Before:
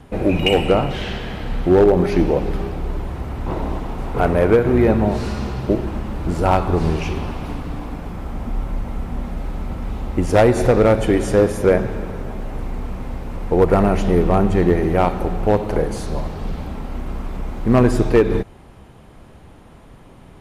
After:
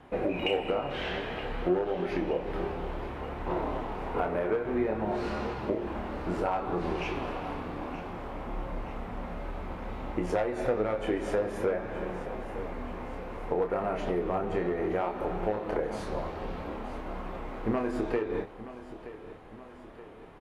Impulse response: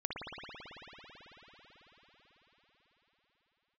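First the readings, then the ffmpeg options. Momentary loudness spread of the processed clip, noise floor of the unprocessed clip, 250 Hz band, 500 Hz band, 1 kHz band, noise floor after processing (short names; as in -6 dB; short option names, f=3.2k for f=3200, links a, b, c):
10 LU, -44 dBFS, -14.0 dB, -12.5 dB, -10.0 dB, -47 dBFS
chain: -filter_complex "[0:a]bass=f=250:g=-12,treble=f=4k:g=-13,asplit=2[a][b];[b]adelay=28,volume=-5dB[c];[a][c]amix=inputs=2:normalize=0,acompressor=threshold=-21dB:ratio=12,flanger=delay=5.5:depth=6.9:regen=73:speed=0.58:shape=sinusoidal,aecho=1:1:924|1848|2772|3696|4620:0.188|0.0998|0.0529|0.028|0.0149"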